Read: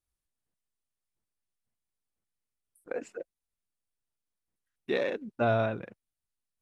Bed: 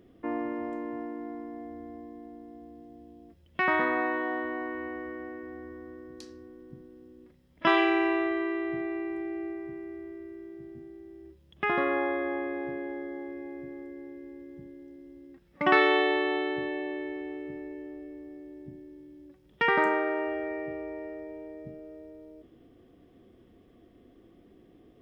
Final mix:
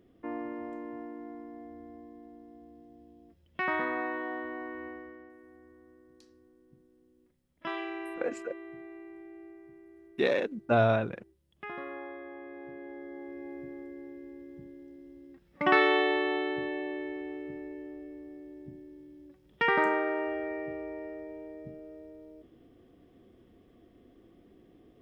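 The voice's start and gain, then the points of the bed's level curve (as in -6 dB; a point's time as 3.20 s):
5.30 s, +2.5 dB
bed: 4.88 s -5 dB
5.33 s -13.5 dB
12.34 s -13.5 dB
13.51 s -1.5 dB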